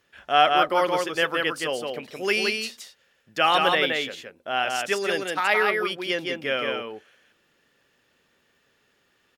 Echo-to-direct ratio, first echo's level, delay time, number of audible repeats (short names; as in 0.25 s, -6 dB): -3.5 dB, -3.5 dB, 0.17 s, 1